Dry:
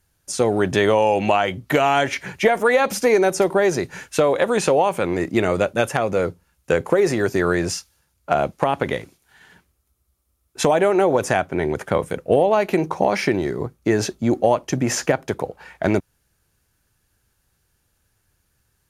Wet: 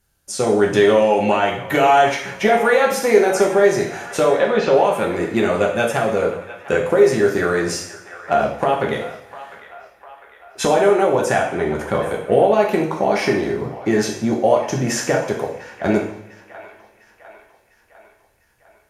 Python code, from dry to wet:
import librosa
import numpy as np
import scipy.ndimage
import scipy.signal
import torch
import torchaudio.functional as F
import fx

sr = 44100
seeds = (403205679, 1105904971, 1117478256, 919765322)

y = fx.lowpass(x, sr, hz=4500.0, slope=24, at=(4.24, 4.74))
y = fx.echo_wet_bandpass(y, sr, ms=702, feedback_pct=55, hz=1500.0, wet_db=-14)
y = fx.rev_double_slope(y, sr, seeds[0], early_s=0.63, late_s=2.7, knee_db=-25, drr_db=-1.0)
y = F.gain(torch.from_numpy(y), -2.0).numpy()